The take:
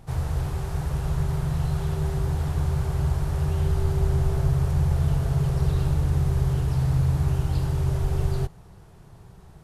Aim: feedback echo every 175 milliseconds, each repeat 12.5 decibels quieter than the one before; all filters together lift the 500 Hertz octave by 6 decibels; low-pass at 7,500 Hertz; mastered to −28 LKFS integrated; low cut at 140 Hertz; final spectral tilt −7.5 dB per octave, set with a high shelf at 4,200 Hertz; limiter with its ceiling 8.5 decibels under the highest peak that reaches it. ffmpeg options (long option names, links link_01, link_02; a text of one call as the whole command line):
ffmpeg -i in.wav -af "highpass=140,lowpass=7500,equalizer=frequency=500:width_type=o:gain=8.5,highshelf=frequency=4200:gain=-8,alimiter=limit=-24dB:level=0:latency=1,aecho=1:1:175|350|525:0.237|0.0569|0.0137,volume=4dB" out.wav